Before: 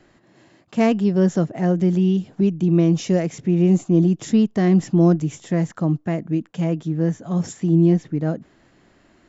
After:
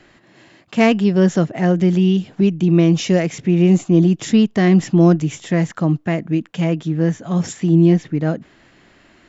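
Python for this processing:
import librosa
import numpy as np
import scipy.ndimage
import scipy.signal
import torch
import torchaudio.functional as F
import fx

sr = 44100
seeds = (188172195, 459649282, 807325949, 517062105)

y = fx.peak_eq(x, sr, hz=2600.0, db=7.0, octaves=1.9)
y = y * librosa.db_to_amplitude(3.0)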